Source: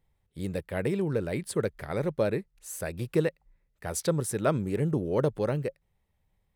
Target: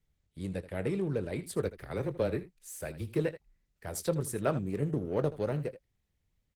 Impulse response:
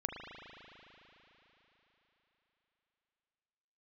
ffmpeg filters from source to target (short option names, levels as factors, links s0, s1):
-filter_complex "[0:a]acrossover=split=230|1100|4100[s0][s1][s2][s3];[s1]adynamicsmooth=sensitivity=2.5:basefreq=740[s4];[s0][s4][s2][s3]amix=inputs=4:normalize=0,asplit=3[s5][s6][s7];[s5]afade=t=out:st=1.61:d=0.02[s8];[s6]afreqshift=-14,afade=t=in:st=1.61:d=0.02,afade=t=out:st=3.18:d=0.02[s9];[s7]afade=t=in:st=3.18:d=0.02[s10];[s8][s9][s10]amix=inputs=3:normalize=0,aecho=1:1:21|79:0.211|0.178,asplit=3[s11][s12][s13];[s11]afade=t=out:st=4.56:d=0.02[s14];[s12]aeval=exprs='0.237*(cos(1*acos(clip(val(0)/0.237,-1,1)))-cos(1*PI/2))+0.00422*(cos(3*acos(clip(val(0)/0.237,-1,1)))-cos(3*PI/2))+0.00376*(cos(7*acos(clip(val(0)/0.237,-1,1)))-cos(7*PI/2))':c=same,afade=t=in:st=4.56:d=0.02,afade=t=out:st=5.39:d=0.02[s15];[s13]afade=t=in:st=5.39:d=0.02[s16];[s14][s15][s16]amix=inputs=3:normalize=0,volume=0.668" -ar 48000 -c:a libopus -b:a 16k